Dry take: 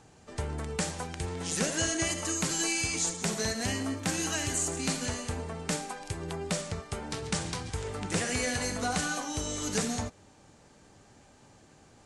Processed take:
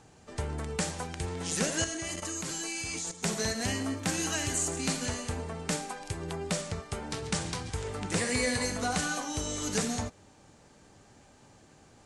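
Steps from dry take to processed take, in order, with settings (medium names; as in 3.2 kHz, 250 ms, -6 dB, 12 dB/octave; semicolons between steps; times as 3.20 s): 1.84–3.23 s: level held to a coarse grid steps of 12 dB; 8.18–8.66 s: rippled EQ curve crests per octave 0.96, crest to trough 7 dB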